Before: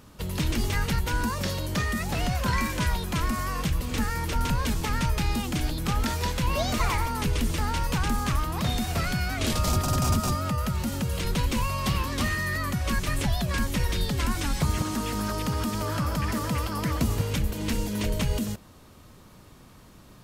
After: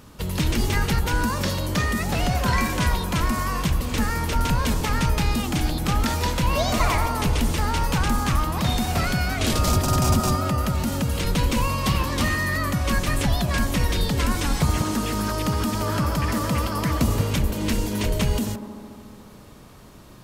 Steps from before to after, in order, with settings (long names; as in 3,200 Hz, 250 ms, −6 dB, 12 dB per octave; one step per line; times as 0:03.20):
delay with a band-pass on its return 72 ms, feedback 83%, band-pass 520 Hz, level −8.5 dB
level +4 dB